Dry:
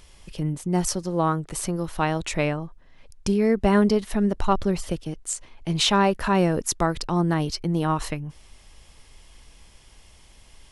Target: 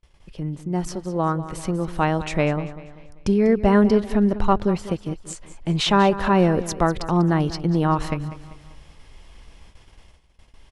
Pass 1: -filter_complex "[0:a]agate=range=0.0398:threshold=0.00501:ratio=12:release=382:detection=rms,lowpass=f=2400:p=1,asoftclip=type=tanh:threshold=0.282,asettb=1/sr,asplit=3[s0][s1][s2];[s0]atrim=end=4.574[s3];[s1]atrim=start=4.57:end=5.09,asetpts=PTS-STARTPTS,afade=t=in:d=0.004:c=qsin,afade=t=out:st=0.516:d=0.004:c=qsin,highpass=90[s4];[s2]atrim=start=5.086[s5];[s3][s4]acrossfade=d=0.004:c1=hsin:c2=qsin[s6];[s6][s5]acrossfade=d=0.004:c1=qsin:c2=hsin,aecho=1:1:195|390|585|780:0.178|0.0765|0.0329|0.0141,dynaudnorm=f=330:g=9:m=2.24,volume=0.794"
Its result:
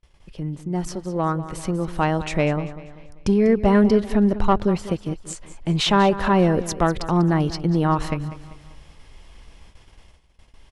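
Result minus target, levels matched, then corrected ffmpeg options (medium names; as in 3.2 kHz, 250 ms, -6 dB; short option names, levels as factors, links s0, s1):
saturation: distortion +16 dB
-filter_complex "[0:a]agate=range=0.0398:threshold=0.00501:ratio=12:release=382:detection=rms,lowpass=f=2400:p=1,asoftclip=type=tanh:threshold=0.794,asettb=1/sr,asplit=3[s0][s1][s2];[s0]atrim=end=4.574[s3];[s1]atrim=start=4.57:end=5.09,asetpts=PTS-STARTPTS,afade=t=in:d=0.004:c=qsin,afade=t=out:st=0.516:d=0.004:c=qsin,highpass=90[s4];[s2]atrim=start=5.086[s5];[s3][s4]acrossfade=d=0.004:c1=hsin:c2=qsin[s6];[s6][s5]acrossfade=d=0.004:c1=qsin:c2=hsin,aecho=1:1:195|390|585|780:0.178|0.0765|0.0329|0.0141,dynaudnorm=f=330:g=9:m=2.24,volume=0.794"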